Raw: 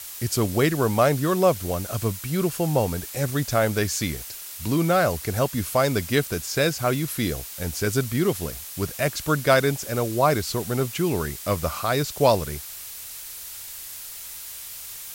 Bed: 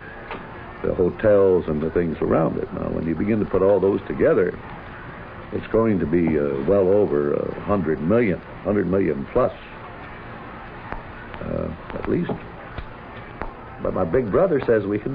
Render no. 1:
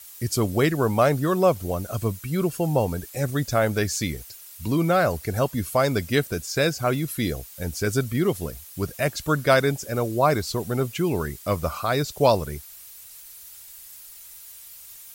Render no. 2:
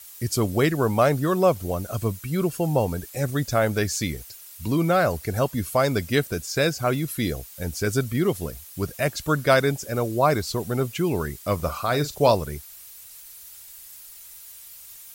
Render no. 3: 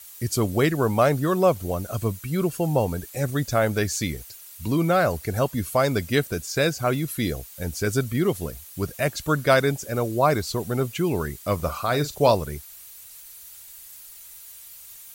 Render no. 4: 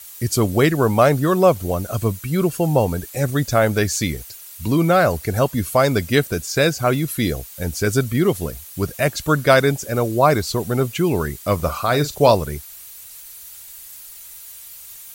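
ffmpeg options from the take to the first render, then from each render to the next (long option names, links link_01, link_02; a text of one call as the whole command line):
ffmpeg -i in.wav -af "afftdn=noise_reduction=10:noise_floor=-38" out.wav
ffmpeg -i in.wav -filter_complex "[0:a]asettb=1/sr,asplit=3[link_01][link_02][link_03];[link_01]atrim=end=11.554[link_04];[link_02]atrim=start=11.55:end=12.34,asetpts=PTS-STARTPTS,afade=type=in:duration=0.004:curve=qsin,afade=type=out:start_time=0.786:duration=0.004:curve=qsin,asplit=2[link_05][link_06];[link_06]adelay=41,volume=-13dB[link_07];[link_05][link_07]amix=inputs=2:normalize=0,atrim=end_sample=34839[link_08];[link_03]atrim=start=12.336[link_09];[link_04][link_08]acrossfade=duration=0.004:curve1=hsin:curve2=qsin[link_10];[link_10][link_09]acrossfade=duration=0.004:curve1=qsin:curve2=hsin" out.wav
ffmpeg -i in.wav -af "bandreject=frequency=5200:width=23" out.wav
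ffmpeg -i in.wav -af "volume=5dB,alimiter=limit=-2dB:level=0:latency=1" out.wav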